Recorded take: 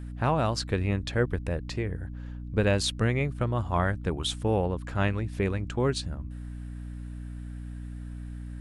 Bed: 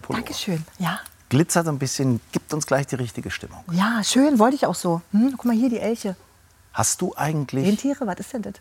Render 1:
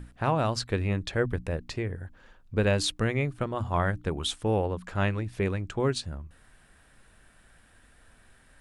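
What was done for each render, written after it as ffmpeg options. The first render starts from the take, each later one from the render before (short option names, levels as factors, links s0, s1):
-af "bandreject=f=60:t=h:w=6,bandreject=f=120:t=h:w=6,bandreject=f=180:t=h:w=6,bandreject=f=240:t=h:w=6,bandreject=f=300:t=h:w=6"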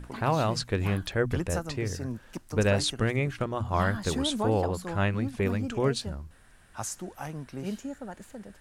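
-filter_complex "[1:a]volume=0.188[s0];[0:a][s0]amix=inputs=2:normalize=0"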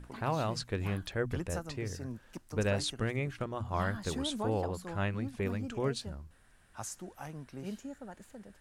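-af "volume=0.473"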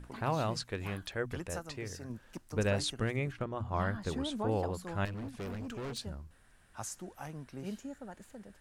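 -filter_complex "[0:a]asettb=1/sr,asplit=3[s0][s1][s2];[s0]atrim=end=0.574[s3];[s1]atrim=start=0.57:end=2.1,asetpts=PTS-STARTPTS,afade=t=in:d=0.004:c=qsin,afade=t=out:st=1.526:d=0.004:c=qsin,lowshelf=f=390:g=-6[s4];[s2]atrim=start=2.096[s5];[s3][s4]acrossfade=d=0.004:c1=hsin:c2=qsin[s6];[s6][s5]acrossfade=d=0.004:c1=qsin:c2=hsin,asettb=1/sr,asplit=3[s7][s8][s9];[s7]atrim=end=3.324[s10];[s8]atrim=start=3.32:end=4.49,asetpts=PTS-STARTPTS,afade=t=in:d=0.004:c=qsin,afade=t=out:st=1.166:d=0.004:c=qsin,highshelf=f=3900:g=-9[s11];[s9]atrim=start=4.486[s12];[s10][s11]acrossfade=d=0.004:c1=hsin:c2=qsin[s13];[s13][s12]acrossfade=d=0.004:c1=qsin:c2=hsin,asettb=1/sr,asplit=3[s14][s15][s16];[s14]atrim=end=5.054[s17];[s15]atrim=start=5.05:end=5.98,asetpts=PTS-STARTPTS,afade=t=in:d=0.004:c=qsin,afade=t=out:st=0.926:d=0.004:c=qsin,asoftclip=type=hard:threshold=0.0133[s18];[s16]atrim=start=5.976[s19];[s17][s18]acrossfade=d=0.004:c1=hsin:c2=qsin[s20];[s20][s19]acrossfade=d=0.004:c1=qsin:c2=hsin"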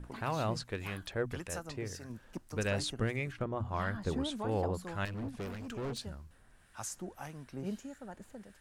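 -filter_complex "[0:a]asplit=2[s0][s1];[s1]asoftclip=type=tanh:threshold=0.0355,volume=0.376[s2];[s0][s2]amix=inputs=2:normalize=0,acrossover=split=1200[s3][s4];[s3]aeval=exprs='val(0)*(1-0.5/2+0.5/2*cos(2*PI*1.7*n/s))':c=same[s5];[s4]aeval=exprs='val(0)*(1-0.5/2-0.5/2*cos(2*PI*1.7*n/s))':c=same[s6];[s5][s6]amix=inputs=2:normalize=0"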